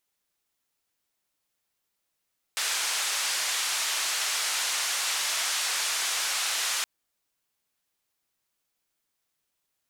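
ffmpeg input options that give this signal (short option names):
-f lavfi -i "anoisesrc=c=white:d=4.27:r=44100:seed=1,highpass=f=950,lowpass=f=7900,volume=-18.8dB"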